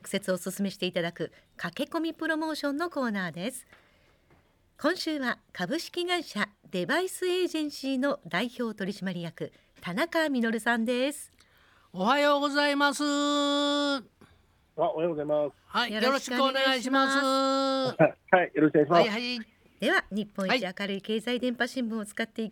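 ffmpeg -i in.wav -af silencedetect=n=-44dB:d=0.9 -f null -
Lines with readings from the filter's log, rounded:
silence_start: 3.73
silence_end: 4.79 | silence_duration: 1.06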